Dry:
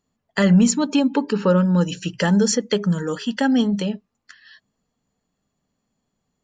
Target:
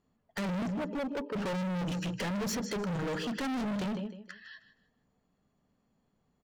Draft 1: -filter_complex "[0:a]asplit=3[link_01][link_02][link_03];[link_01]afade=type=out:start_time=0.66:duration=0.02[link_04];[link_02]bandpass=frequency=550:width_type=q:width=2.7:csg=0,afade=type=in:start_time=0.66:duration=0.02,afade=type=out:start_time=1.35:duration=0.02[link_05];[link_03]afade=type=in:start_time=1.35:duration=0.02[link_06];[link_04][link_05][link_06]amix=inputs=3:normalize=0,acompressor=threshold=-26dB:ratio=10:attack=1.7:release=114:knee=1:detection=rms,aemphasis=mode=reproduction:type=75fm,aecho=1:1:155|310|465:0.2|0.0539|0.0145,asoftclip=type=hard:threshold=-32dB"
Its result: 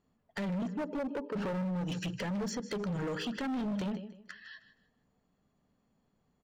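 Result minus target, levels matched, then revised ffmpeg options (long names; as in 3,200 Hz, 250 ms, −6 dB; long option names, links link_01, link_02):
downward compressor: peak gain reduction +10.5 dB
-filter_complex "[0:a]asplit=3[link_01][link_02][link_03];[link_01]afade=type=out:start_time=0.66:duration=0.02[link_04];[link_02]bandpass=frequency=550:width_type=q:width=2.7:csg=0,afade=type=in:start_time=0.66:duration=0.02,afade=type=out:start_time=1.35:duration=0.02[link_05];[link_03]afade=type=in:start_time=1.35:duration=0.02[link_06];[link_04][link_05][link_06]amix=inputs=3:normalize=0,acompressor=threshold=-14.5dB:ratio=10:attack=1.7:release=114:knee=1:detection=rms,aemphasis=mode=reproduction:type=75fm,aecho=1:1:155|310|465:0.2|0.0539|0.0145,asoftclip=type=hard:threshold=-32dB"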